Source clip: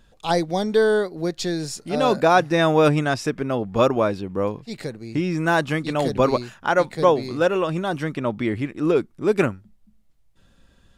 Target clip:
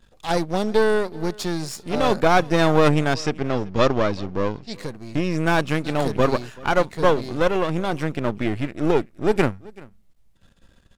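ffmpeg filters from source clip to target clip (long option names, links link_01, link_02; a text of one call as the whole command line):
ffmpeg -i in.wav -filter_complex "[0:a]aeval=exprs='if(lt(val(0),0),0.251*val(0),val(0))':channel_layout=same,asettb=1/sr,asplit=3[link_01][link_02][link_03];[link_01]atrim=end=3.154[link_04];[link_02]atrim=start=3.15:end=4.74,asetpts=PTS-STARTPTS,afade=type=in:duration=0.004:curve=qsin,afade=type=out:start_time=1.586:duration=0.004:curve=qsin,lowpass=frequency=5500:width_type=q:width=1.5[link_05];[link_03]atrim=start=4.736[link_06];[link_04][link_05]acrossfade=duration=0.004:curve1=hsin:curve2=qsin[link_07];[link_07][link_06]acrossfade=duration=0.004:curve1=qsin:curve2=hsin,aecho=1:1:383:0.0708,volume=3dB" out.wav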